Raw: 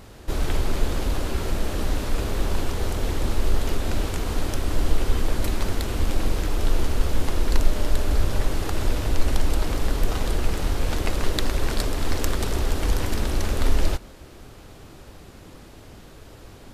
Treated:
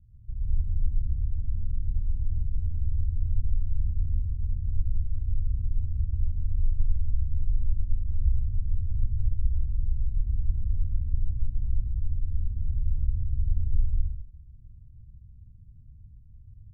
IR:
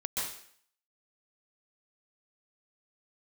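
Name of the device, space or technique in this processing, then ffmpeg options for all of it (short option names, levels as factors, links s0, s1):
club heard from the street: -filter_complex "[0:a]alimiter=limit=0.224:level=0:latency=1:release=31,lowpass=f=130:w=0.5412,lowpass=f=130:w=1.3066[s0];[1:a]atrim=start_sample=2205[s1];[s0][s1]afir=irnorm=-1:irlink=0,volume=0.501"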